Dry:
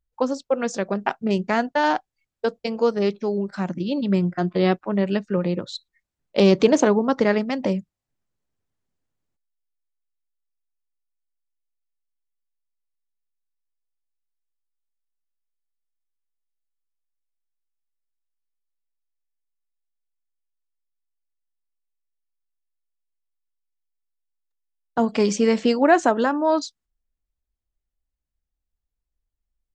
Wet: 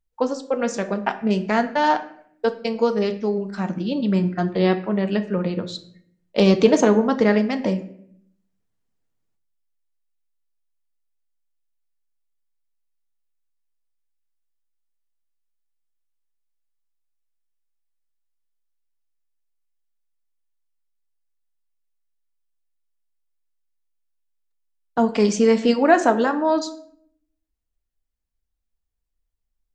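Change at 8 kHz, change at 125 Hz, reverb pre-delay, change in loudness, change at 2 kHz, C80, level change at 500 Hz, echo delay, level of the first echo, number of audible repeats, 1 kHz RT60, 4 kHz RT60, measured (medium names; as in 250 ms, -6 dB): +0.5 dB, +1.0 dB, 4 ms, +1.0 dB, +0.5 dB, 16.5 dB, +1.0 dB, no echo, no echo, no echo, 0.60 s, 0.45 s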